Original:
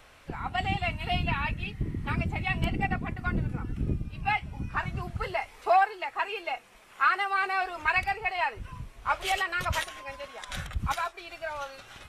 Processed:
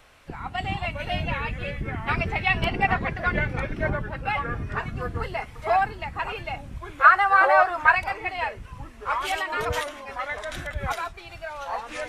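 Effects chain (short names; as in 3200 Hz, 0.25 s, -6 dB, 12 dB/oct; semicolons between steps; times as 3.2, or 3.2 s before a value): 2.08–3.9 spectral gain 360–6100 Hz +8 dB; echoes that change speed 0.265 s, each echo -4 st, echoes 2, each echo -6 dB; 7.04–7.95 band shelf 1100 Hz +10 dB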